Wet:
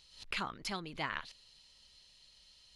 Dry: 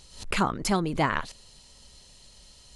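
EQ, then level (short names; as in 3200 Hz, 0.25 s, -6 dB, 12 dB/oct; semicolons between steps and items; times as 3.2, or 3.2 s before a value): air absorption 340 m; pre-emphasis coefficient 0.9; high shelf 2500 Hz +11 dB; +2.0 dB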